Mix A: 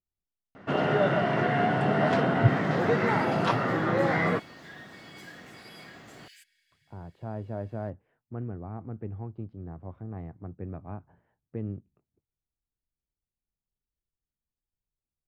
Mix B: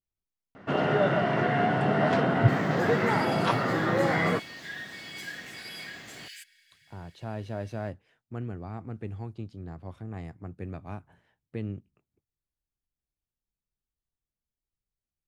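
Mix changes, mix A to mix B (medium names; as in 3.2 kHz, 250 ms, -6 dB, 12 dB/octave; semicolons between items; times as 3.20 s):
speech: remove low-pass 1.2 kHz 12 dB/octave; second sound +9.0 dB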